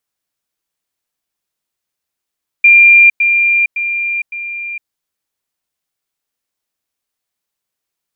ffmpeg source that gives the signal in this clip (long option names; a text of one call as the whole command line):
ffmpeg -f lavfi -i "aevalsrc='pow(10,(-2.5-6*floor(t/0.56))/20)*sin(2*PI*2390*t)*clip(min(mod(t,0.56),0.46-mod(t,0.56))/0.005,0,1)':duration=2.24:sample_rate=44100" out.wav